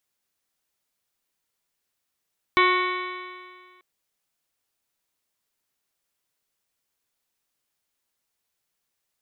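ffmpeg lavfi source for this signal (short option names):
-f lavfi -i "aevalsrc='0.0891*pow(10,-3*t/1.87)*sin(2*PI*362.31*t)+0.0141*pow(10,-3*t/1.87)*sin(2*PI*726.46*t)+0.141*pow(10,-3*t/1.87)*sin(2*PI*1094.28*t)+0.0376*pow(10,-3*t/1.87)*sin(2*PI*1467.56*t)+0.0562*pow(10,-3*t/1.87)*sin(2*PI*1848.06*t)+0.106*pow(10,-3*t/1.87)*sin(2*PI*2237.48*t)+0.0119*pow(10,-3*t/1.87)*sin(2*PI*2637.43*t)+0.0266*pow(10,-3*t/1.87)*sin(2*PI*3049.48*t)+0.0316*pow(10,-3*t/1.87)*sin(2*PI*3475.08*t)+0.0237*pow(10,-3*t/1.87)*sin(2*PI*3915.63*t)':d=1.24:s=44100"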